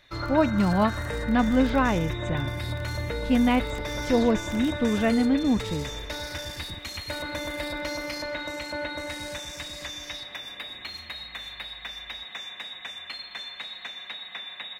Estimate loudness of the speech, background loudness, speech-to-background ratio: -25.0 LUFS, -33.0 LUFS, 8.0 dB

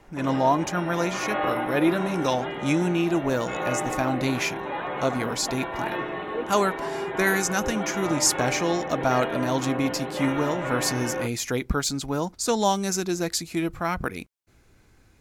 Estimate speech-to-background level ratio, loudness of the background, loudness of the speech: 5.0 dB, -31.0 LUFS, -26.0 LUFS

